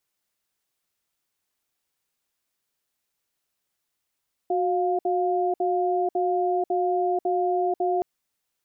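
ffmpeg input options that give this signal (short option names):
-f lavfi -i "aevalsrc='0.0668*(sin(2*PI*366*t)+sin(2*PI*705*t))*clip(min(mod(t,0.55),0.49-mod(t,0.55))/0.005,0,1)':d=3.52:s=44100"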